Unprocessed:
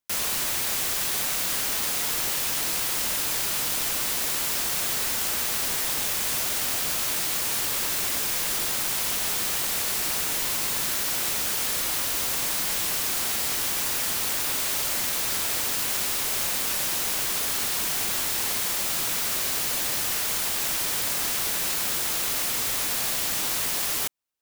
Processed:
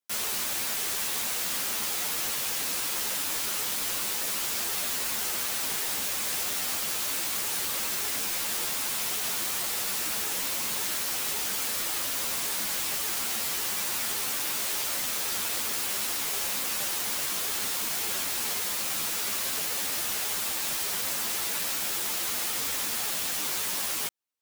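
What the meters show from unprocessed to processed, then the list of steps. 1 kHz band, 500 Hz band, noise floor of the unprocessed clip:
-3.0 dB, -3.5 dB, -27 dBFS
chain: bass shelf 84 Hz -10.5 dB; three-phase chorus

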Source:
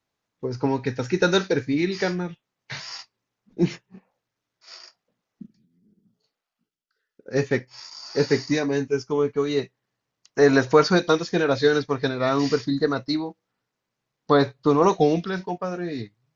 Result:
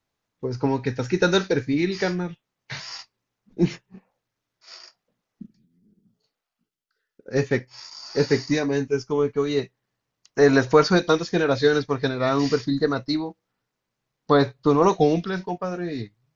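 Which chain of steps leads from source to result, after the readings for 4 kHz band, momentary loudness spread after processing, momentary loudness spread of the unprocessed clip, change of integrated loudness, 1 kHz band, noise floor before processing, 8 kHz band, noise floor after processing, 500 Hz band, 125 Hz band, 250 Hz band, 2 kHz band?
0.0 dB, 16 LU, 16 LU, +0.5 dB, 0.0 dB, -84 dBFS, no reading, -83 dBFS, 0.0 dB, +1.5 dB, +0.5 dB, 0.0 dB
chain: bass shelf 62 Hz +9 dB

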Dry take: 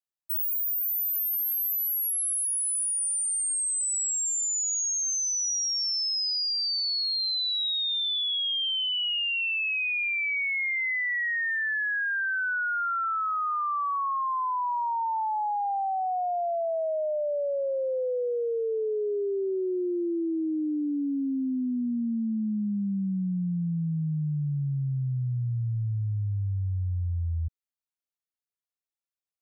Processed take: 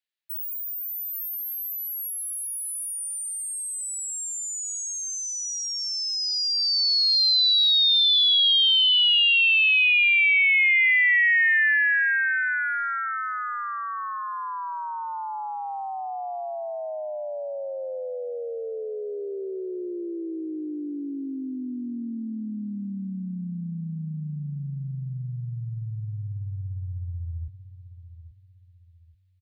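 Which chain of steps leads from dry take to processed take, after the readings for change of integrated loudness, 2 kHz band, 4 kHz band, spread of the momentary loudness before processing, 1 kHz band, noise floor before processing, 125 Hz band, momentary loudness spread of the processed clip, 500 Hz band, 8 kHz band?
+4.5 dB, +8.0 dB, +8.0 dB, 5 LU, -3.0 dB, under -85 dBFS, -4.0 dB, 17 LU, -4.0 dB, -3.5 dB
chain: high-order bell 2.7 kHz +13 dB; feedback delay 833 ms, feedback 33%, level -13 dB; trim -4 dB

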